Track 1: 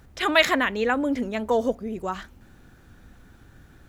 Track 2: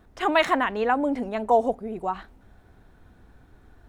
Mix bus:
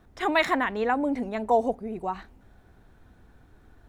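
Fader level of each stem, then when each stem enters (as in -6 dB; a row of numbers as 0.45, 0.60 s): -16.5, -2.0 dB; 0.00, 0.00 s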